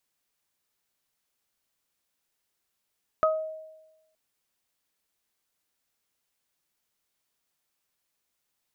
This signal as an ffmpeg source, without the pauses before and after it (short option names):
-f lavfi -i "aevalsrc='0.106*pow(10,-3*t/1.06)*sin(2*PI*631*t)+0.126*pow(10,-3*t/0.26)*sin(2*PI*1262*t)':d=0.92:s=44100"